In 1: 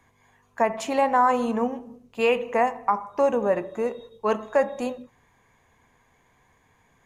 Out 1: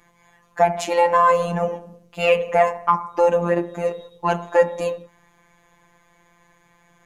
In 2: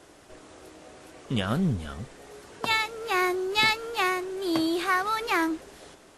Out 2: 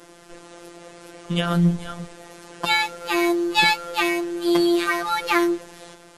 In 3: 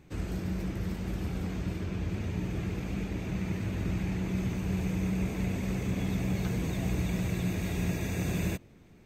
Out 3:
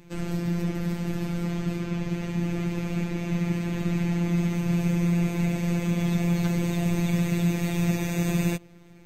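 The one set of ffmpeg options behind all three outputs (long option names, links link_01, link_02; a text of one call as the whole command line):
ffmpeg -i in.wav -af "acontrast=33,afftfilt=real='hypot(re,im)*cos(PI*b)':imag='0':win_size=1024:overlap=0.75,volume=3.5dB" out.wav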